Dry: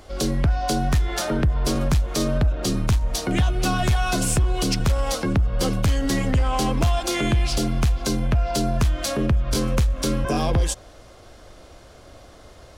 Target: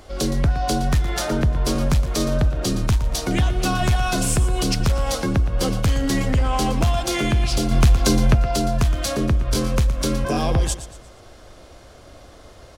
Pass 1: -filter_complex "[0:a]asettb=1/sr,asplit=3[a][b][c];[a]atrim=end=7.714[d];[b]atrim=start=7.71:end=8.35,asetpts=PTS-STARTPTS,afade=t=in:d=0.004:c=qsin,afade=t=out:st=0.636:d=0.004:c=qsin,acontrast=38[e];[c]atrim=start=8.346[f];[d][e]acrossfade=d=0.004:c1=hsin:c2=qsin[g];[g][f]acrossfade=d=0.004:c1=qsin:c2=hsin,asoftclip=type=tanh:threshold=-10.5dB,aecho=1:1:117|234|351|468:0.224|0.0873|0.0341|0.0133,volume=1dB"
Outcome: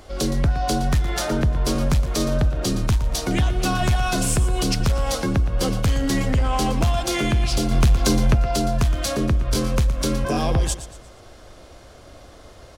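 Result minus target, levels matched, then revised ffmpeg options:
soft clip: distortion +14 dB
-filter_complex "[0:a]asettb=1/sr,asplit=3[a][b][c];[a]atrim=end=7.714[d];[b]atrim=start=7.71:end=8.35,asetpts=PTS-STARTPTS,afade=t=in:d=0.004:c=qsin,afade=t=out:st=0.636:d=0.004:c=qsin,acontrast=38[e];[c]atrim=start=8.346[f];[d][e]acrossfade=d=0.004:c1=hsin:c2=qsin[g];[g][f]acrossfade=d=0.004:c1=qsin:c2=hsin,asoftclip=type=tanh:threshold=-2.5dB,aecho=1:1:117|234|351|468:0.224|0.0873|0.0341|0.0133,volume=1dB"

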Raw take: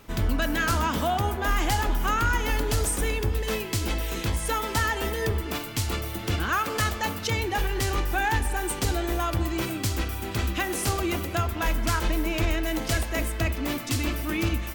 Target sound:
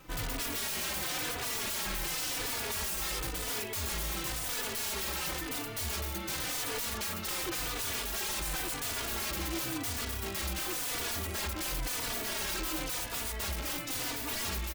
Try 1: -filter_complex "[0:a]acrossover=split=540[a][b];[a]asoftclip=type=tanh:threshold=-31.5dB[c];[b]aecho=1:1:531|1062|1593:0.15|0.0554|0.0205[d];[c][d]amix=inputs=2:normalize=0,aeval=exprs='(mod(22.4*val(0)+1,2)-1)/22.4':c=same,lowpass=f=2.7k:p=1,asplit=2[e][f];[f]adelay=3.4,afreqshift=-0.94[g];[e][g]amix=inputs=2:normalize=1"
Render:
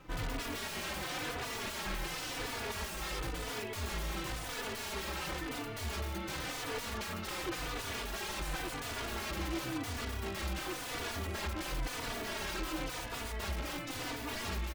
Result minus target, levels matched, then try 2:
2000 Hz band +3.0 dB
-filter_complex "[0:a]acrossover=split=540[a][b];[a]asoftclip=type=tanh:threshold=-31.5dB[c];[b]aecho=1:1:531|1062|1593:0.15|0.0554|0.0205[d];[c][d]amix=inputs=2:normalize=0,aeval=exprs='(mod(22.4*val(0)+1,2)-1)/22.4':c=same,asplit=2[e][f];[f]adelay=3.4,afreqshift=-0.94[g];[e][g]amix=inputs=2:normalize=1"

